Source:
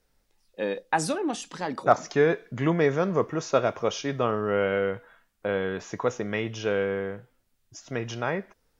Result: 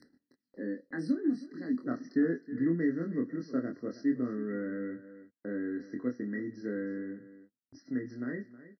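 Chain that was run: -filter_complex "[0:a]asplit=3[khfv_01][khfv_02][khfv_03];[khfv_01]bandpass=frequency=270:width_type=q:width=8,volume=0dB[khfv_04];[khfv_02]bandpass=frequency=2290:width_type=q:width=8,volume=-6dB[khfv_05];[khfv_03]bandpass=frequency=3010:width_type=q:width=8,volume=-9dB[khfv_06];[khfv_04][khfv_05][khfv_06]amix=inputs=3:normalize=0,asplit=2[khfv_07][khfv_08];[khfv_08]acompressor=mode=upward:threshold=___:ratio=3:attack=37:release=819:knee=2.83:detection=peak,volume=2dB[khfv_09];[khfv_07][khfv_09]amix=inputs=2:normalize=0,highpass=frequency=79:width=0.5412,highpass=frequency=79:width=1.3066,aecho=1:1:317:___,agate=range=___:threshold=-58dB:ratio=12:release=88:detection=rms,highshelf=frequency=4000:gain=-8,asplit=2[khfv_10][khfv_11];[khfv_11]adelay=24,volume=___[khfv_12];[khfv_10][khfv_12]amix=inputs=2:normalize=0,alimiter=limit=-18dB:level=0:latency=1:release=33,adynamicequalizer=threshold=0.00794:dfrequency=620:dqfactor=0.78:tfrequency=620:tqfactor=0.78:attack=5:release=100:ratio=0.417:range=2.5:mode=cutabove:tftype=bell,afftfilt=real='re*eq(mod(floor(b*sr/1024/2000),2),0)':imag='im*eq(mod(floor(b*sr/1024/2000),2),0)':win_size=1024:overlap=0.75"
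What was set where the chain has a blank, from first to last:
-49dB, 0.158, -25dB, -3.5dB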